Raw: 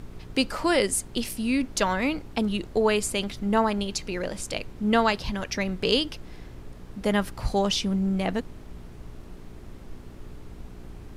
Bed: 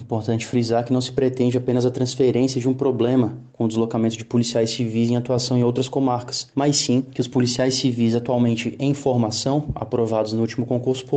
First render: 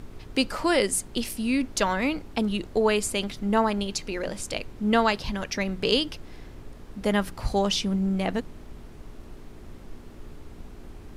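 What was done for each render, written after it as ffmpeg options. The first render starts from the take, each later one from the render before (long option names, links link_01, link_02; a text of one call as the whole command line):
ffmpeg -i in.wav -af "bandreject=frequency=60:width_type=h:width=4,bandreject=frequency=120:width_type=h:width=4,bandreject=frequency=180:width_type=h:width=4" out.wav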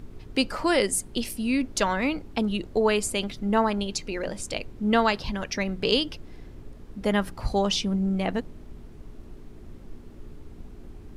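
ffmpeg -i in.wav -af "afftdn=noise_reduction=6:noise_floor=-45" out.wav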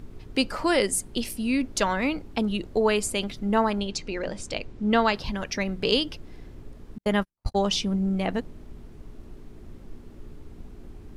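ffmpeg -i in.wav -filter_complex "[0:a]asettb=1/sr,asplit=3[link_01][link_02][link_03];[link_01]atrim=end=3.804[link_04];[link_02]atrim=start=3.8:end=5.16,asetpts=PTS-STARTPTS,afade=type=in:duration=0.004:curve=qsin,afade=type=out:start_time=1.356:duration=0.004:curve=qsin,lowpass=7200[link_05];[link_03]atrim=start=5.156[link_06];[link_04][link_05]acrossfade=duration=0.004:curve1=hsin:curve2=qsin[link_07];[link_07][link_06]acrossfade=duration=0.004:curve1=qsin:curve2=hsin,asettb=1/sr,asplit=3[link_08][link_09][link_10];[link_08]atrim=end=6.984[link_11];[link_09]atrim=start=6.98:end=7.71,asetpts=PTS-STARTPTS,afade=type=in:duration=0.004:curve=qsin,afade=type=out:start_time=0.726:duration=0.004:curve=qsin,agate=range=-53dB:threshold=-27dB:ratio=16:release=100:detection=peak[link_12];[link_10]atrim=start=7.706[link_13];[link_11][link_12]acrossfade=duration=0.004:curve1=hsin:curve2=qsin[link_14];[link_14][link_13]acrossfade=duration=0.004:curve1=qsin:curve2=hsin" out.wav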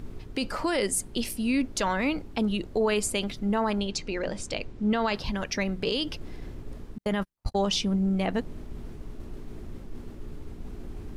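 ffmpeg -i in.wav -af "alimiter=limit=-17dB:level=0:latency=1:release=22,areverse,acompressor=mode=upward:threshold=-30dB:ratio=2.5,areverse" out.wav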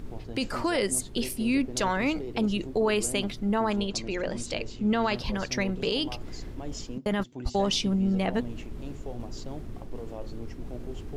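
ffmpeg -i in.wav -i bed.wav -filter_complex "[1:a]volume=-20.5dB[link_01];[0:a][link_01]amix=inputs=2:normalize=0" out.wav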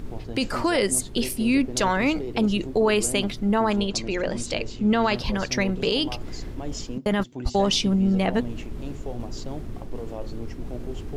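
ffmpeg -i in.wav -af "volume=4.5dB" out.wav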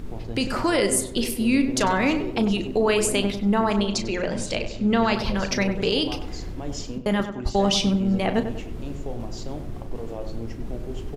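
ffmpeg -i in.wav -filter_complex "[0:a]asplit=2[link_01][link_02];[link_02]adelay=35,volume=-11.5dB[link_03];[link_01][link_03]amix=inputs=2:normalize=0,asplit=2[link_04][link_05];[link_05]adelay=97,lowpass=frequency=1800:poles=1,volume=-8.5dB,asplit=2[link_06][link_07];[link_07]adelay=97,lowpass=frequency=1800:poles=1,volume=0.49,asplit=2[link_08][link_09];[link_09]adelay=97,lowpass=frequency=1800:poles=1,volume=0.49,asplit=2[link_10][link_11];[link_11]adelay=97,lowpass=frequency=1800:poles=1,volume=0.49,asplit=2[link_12][link_13];[link_13]adelay=97,lowpass=frequency=1800:poles=1,volume=0.49,asplit=2[link_14][link_15];[link_15]adelay=97,lowpass=frequency=1800:poles=1,volume=0.49[link_16];[link_04][link_06][link_08][link_10][link_12][link_14][link_16]amix=inputs=7:normalize=0" out.wav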